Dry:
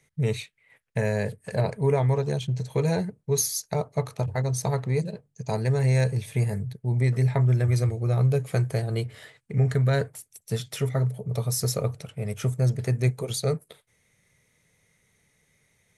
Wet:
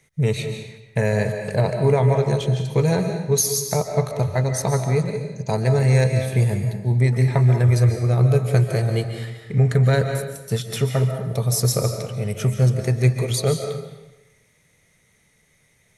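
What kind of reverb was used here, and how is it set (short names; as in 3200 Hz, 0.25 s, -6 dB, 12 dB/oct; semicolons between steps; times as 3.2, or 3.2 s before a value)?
digital reverb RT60 1 s, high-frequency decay 0.9×, pre-delay 0.105 s, DRR 5.5 dB; gain +5 dB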